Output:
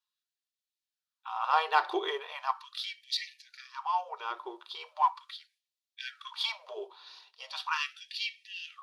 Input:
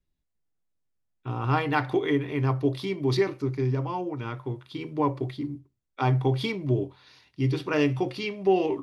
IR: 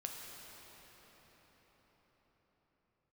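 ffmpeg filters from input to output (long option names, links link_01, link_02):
-filter_complex "[0:a]equalizer=frequency=125:width_type=o:width=1:gain=5,equalizer=frequency=250:width_type=o:width=1:gain=-11,equalizer=frequency=500:width_type=o:width=1:gain=-9,equalizer=frequency=1000:width_type=o:width=1:gain=6,equalizer=frequency=2000:width_type=o:width=1:gain=-7,equalizer=frequency=4000:width_type=o:width=1:gain=8,asplit=2[link_01][link_02];[link_02]asoftclip=type=tanh:threshold=-24dB,volume=-8.5dB[link_03];[link_01][link_03]amix=inputs=2:normalize=0,highshelf=frequency=4100:gain=-7,bandreject=frequency=2100:width=11,afftfilt=real='re*gte(b*sr/1024,320*pow(1800/320,0.5+0.5*sin(2*PI*0.39*pts/sr)))':imag='im*gte(b*sr/1024,320*pow(1800/320,0.5+0.5*sin(2*PI*0.39*pts/sr)))':win_size=1024:overlap=0.75"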